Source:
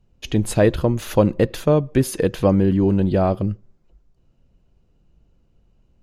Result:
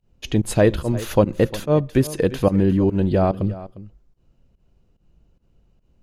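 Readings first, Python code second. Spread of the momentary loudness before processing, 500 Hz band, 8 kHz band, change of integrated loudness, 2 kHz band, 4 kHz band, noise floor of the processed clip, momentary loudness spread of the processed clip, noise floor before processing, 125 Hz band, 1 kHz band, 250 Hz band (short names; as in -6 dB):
7 LU, -0.5 dB, -1.5 dB, -0.5 dB, 0.0 dB, 0.0 dB, -63 dBFS, 8 LU, -61 dBFS, -0.5 dB, -0.5 dB, -1.0 dB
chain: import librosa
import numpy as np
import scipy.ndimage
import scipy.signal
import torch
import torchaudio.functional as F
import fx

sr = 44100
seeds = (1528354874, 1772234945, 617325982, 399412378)

y = fx.volume_shaper(x, sr, bpm=145, per_beat=1, depth_db=-20, release_ms=104.0, shape='fast start')
y = y + 10.0 ** (-16.5 / 20.0) * np.pad(y, (int(353 * sr / 1000.0), 0))[:len(y)]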